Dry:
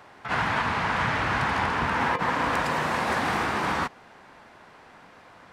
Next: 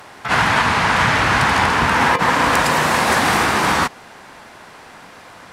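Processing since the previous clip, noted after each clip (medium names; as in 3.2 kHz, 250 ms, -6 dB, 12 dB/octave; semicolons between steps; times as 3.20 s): peaking EQ 12 kHz +10.5 dB 2.1 oct; trim +9 dB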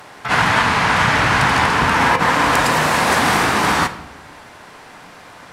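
simulated room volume 390 m³, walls mixed, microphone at 0.39 m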